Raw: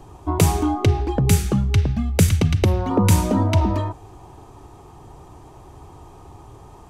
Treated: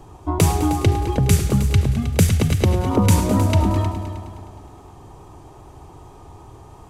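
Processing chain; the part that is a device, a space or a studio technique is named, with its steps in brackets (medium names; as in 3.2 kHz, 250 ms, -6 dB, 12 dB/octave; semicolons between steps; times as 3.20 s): multi-head tape echo (multi-head delay 104 ms, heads all three, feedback 47%, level -14.5 dB; wow and flutter 18 cents)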